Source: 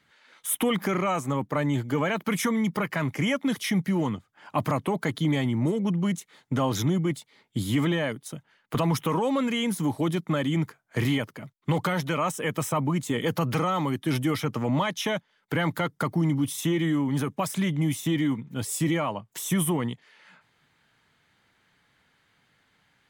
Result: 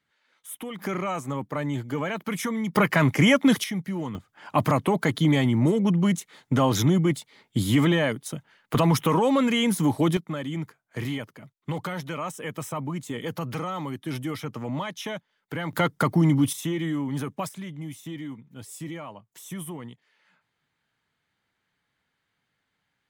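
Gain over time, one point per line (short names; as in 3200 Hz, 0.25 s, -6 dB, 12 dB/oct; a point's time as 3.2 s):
-11.5 dB
from 0.79 s -3 dB
from 2.75 s +7.5 dB
from 3.64 s -5 dB
from 4.15 s +4 dB
from 10.17 s -5.5 dB
from 15.73 s +4.5 dB
from 16.53 s -3 dB
from 17.49 s -11 dB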